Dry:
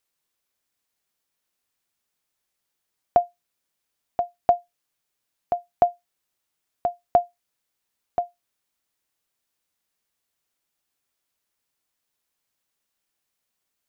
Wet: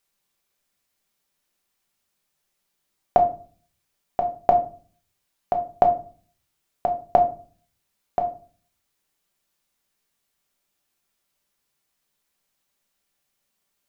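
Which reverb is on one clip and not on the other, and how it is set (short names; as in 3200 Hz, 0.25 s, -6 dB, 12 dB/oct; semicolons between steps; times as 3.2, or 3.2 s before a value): shoebox room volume 320 m³, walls furnished, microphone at 1.2 m; gain +2.5 dB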